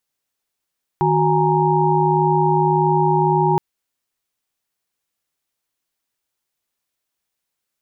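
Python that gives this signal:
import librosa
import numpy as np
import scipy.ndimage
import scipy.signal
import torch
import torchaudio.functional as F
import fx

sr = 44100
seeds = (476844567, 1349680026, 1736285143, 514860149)

y = fx.chord(sr, length_s=2.57, notes=(51, 66, 80, 82), wave='sine', level_db=-19.0)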